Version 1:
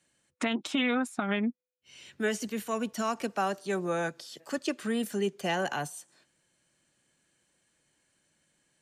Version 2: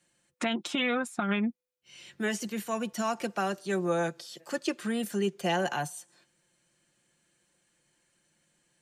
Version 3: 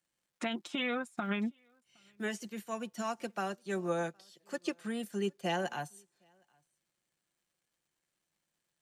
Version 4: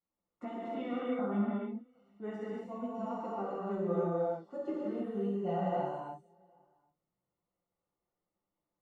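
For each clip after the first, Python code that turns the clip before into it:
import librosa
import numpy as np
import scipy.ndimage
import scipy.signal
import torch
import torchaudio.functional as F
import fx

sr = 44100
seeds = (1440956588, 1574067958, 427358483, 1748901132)

y1 = x + 0.43 * np.pad(x, (int(5.7 * sr / 1000.0), 0))[:len(x)]
y2 = fx.dmg_crackle(y1, sr, seeds[0], per_s=440.0, level_db=-55.0)
y2 = y2 + 10.0 ** (-23.5 / 20.0) * np.pad(y2, (int(765 * sr / 1000.0), 0))[:len(y2)]
y2 = fx.upward_expand(y2, sr, threshold_db=-49.0, expansion=1.5)
y2 = y2 * librosa.db_to_amplitude(-4.0)
y3 = scipy.signal.savgol_filter(y2, 65, 4, mode='constant')
y3 = fx.chorus_voices(y3, sr, voices=6, hz=1.3, base_ms=13, depth_ms=3.0, mix_pct=45)
y3 = fx.rev_gated(y3, sr, seeds[1], gate_ms=350, shape='flat', drr_db=-6.0)
y3 = y3 * librosa.db_to_amplitude(-2.0)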